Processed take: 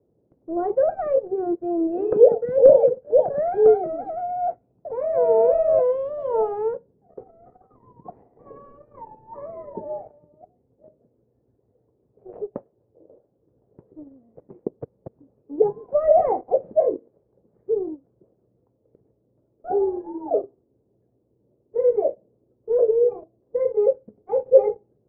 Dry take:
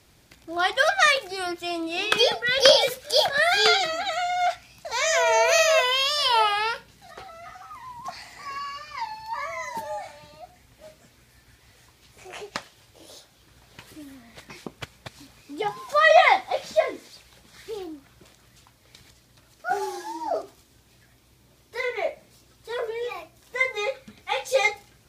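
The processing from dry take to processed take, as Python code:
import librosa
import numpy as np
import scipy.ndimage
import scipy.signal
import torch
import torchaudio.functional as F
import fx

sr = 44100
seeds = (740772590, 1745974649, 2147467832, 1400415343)

y = scipy.signal.sosfilt(scipy.signal.butter(2, 110.0, 'highpass', fs=sr, output='sos'), x)
y = fx.leveller(y, sr, passes=2)
y = fx.ladder_lowpass(y, sr, hz=540.0, resonance_pct=55)
y = y * 10.0 ** (7.0 / 20.0)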